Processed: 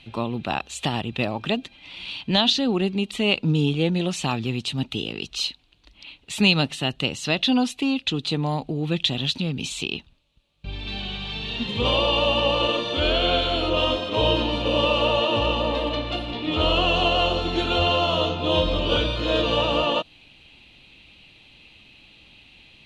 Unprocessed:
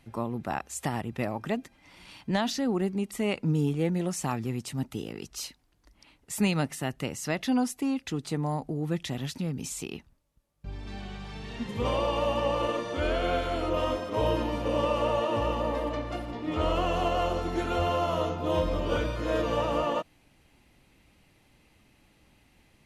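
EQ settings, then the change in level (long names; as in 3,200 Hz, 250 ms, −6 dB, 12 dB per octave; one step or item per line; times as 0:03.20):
low-pass filter 7,000 Hz 12 dB per octave
flat-topped bell 3,200 Hz +15 dB 1 octave
dynamic equaliser 2,300 Hz, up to −7 dB, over −41 dBFS, Q 2.1
+5.0 dB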